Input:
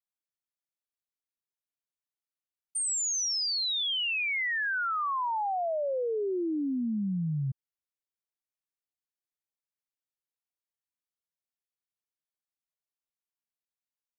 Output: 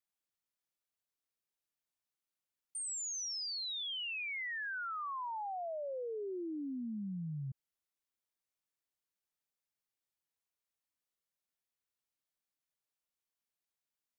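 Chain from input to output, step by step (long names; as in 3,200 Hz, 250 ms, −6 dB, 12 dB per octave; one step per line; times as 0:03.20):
brickwall limiter −38 dBFS, peak gain reduction 11 dB
level +1 dB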